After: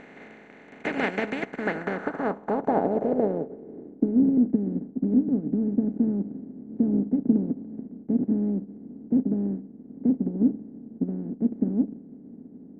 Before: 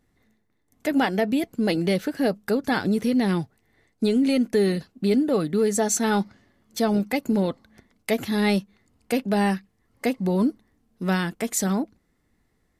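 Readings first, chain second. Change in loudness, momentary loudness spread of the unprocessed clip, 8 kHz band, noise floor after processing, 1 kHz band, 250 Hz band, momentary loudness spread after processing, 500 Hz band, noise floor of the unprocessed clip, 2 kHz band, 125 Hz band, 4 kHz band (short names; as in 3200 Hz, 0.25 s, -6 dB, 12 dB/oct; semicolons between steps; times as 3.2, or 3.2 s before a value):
-2.0 dB, 7 LU, under -30 dB, -49 dBFS, -4.0 dB, -0.5 dB, 16 LU, -5.5 dB, -70 dBFS, n/a, -4.0 dB, under -15 dB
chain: per-bin compression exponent 0.2; low-pass sweep 2300 Hz -> 250 Hz, 1.38–4.27; upward expander 2.5:1, over -21 dBFS; gain -7 dB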